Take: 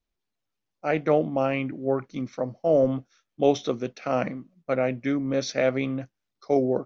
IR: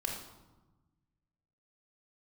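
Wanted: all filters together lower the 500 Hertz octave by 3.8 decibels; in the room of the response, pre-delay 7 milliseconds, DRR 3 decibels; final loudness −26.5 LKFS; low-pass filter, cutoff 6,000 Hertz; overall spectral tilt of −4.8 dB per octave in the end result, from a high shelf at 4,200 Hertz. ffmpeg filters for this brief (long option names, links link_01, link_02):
-filter_complex "[0:a]lowpass=6000,equalizer=frequency=500:width_type=o:gain=-4.5,highshelf=frequency=4200:gain=-4.5,asplit=2[link_01][link_02];[1:a]atrim=start_sample=2205,adelay=7[link_03];[link_02][link_03]afir=irnorm=-1:irlink=0,volume=-5.5dB[link_04];[link_01][link_04]amix=inputs=2:normalize=0,volume=0.5dB"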